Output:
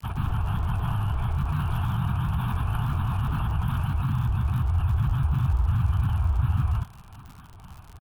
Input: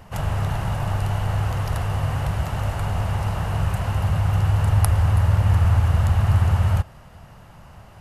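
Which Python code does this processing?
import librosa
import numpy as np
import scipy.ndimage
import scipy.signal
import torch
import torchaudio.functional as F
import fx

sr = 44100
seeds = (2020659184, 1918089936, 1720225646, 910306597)

p1 = fx.granulator(x, sr, seeds[0], grain_ms=100.0, per_s=20.0, spray_ms=100.0, spread_st=7)
p2 = fx.over_compress(p1, sr, threshold_db=-26.0, ratio=-1.0)
p3 = p1 + (p2 * librosa.db_to_amplitude(-1.5))
p4 = fx.band_shelf(p3, sr, hz=5400.0, db=-14.5, octaves=1.2)
p5 = fx.fixed_phaser(p4, sr, hz=2000.0, stages=6)
p6 = fx.dmg_crackle(p5, sr, seeds[1], per_s=95.0, level_db=-31.0)
y = p6 * librosa.db_to_amplitude(-6.0)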